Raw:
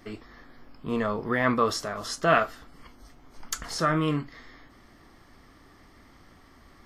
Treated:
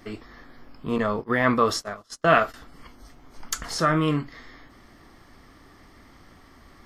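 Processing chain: 0.98–2.54 gate -31 dBFS, range -30 dB; gain +3 dB

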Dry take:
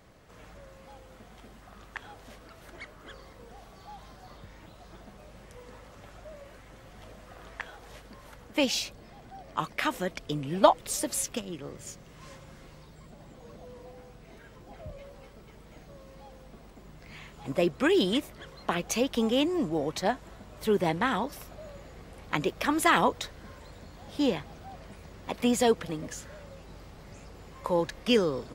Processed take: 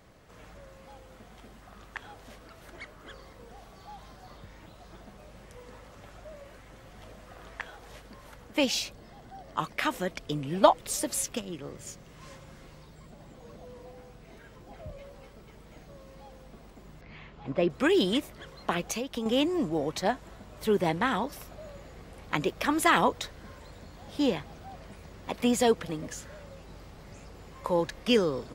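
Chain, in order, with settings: 8.99–9.61 notch 2400 Hz, Q 9.1; 17.01–17.7 air absorption 190 m; 18.83–19.26 compressor 6:1, threshold -30 dBFS, peak gain reduction 9 dB

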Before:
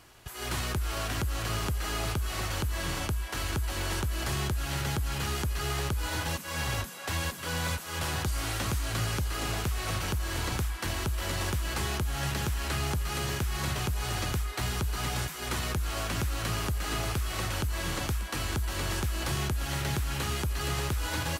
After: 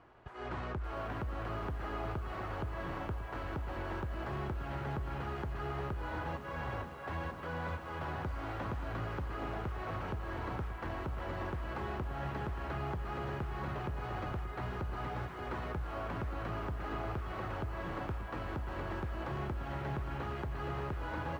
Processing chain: LPF 1200 Hz 12 dB/oct; low shelf 210 Hz -8.5 dB; in parallel at 0 dB: limiter -34.5 dBFS, peak gain reduction 10.5 dB; on the sum: lo-fi delay 0.579 s, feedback 55%, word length 9-bit, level -11 dB; gain -5.5 dB

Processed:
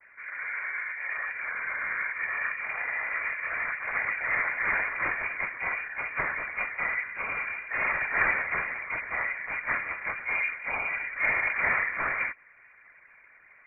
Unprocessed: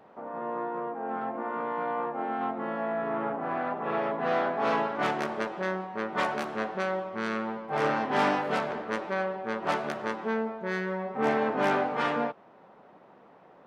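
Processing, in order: noise vocoder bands 16; inverted band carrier 2600 Hz

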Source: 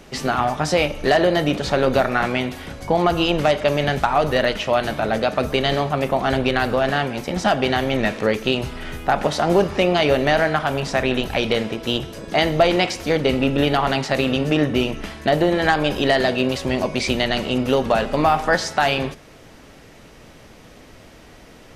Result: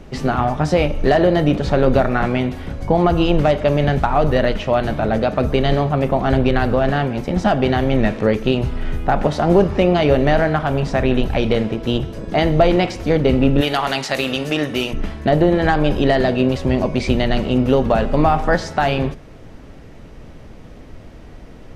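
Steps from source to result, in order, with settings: tilt -2.5 dB/oct, from 13.6 s +1.5 dB/oct, from 14.92 s -2.5 dB/oct

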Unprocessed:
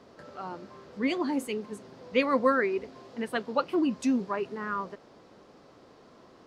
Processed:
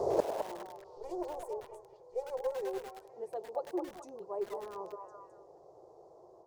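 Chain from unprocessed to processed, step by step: 0.8–3.09 minimum comb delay 2.1 ms; EQ curve 150 Hz 0 dB, 250 Hz -21 dB, 350 Hz +9 dB, 840 Hz +8 dB, 1500 Hz -19 dB, 3000 Hz -22 dB, 6500 Hz -1 dB; AGC gain up to 15.5 dB; flipped gate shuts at -30 dBFS, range -40 dB; delay with a stepping band-pass 0.212 s, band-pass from 850 Hz, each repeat 0.7 oct, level -2 dB; lo-fi delay 0.102 s, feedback 80%, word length 9-bit, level -11.5 dB; gain +16 dB

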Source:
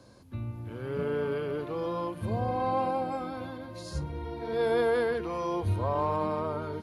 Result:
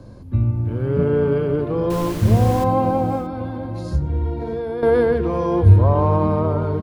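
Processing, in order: high shelf 9300 Hz +8 dB; 1.9–2.64 requantised 6-bit, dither triangular; tapped delay 92/628 ms -18/-16 dB; 3.2–4.83 compressor 6:1, threshold -35 dBFS, peak gain reduction 12 dB; tilt -3.5 dB/oct; gain +7 dB

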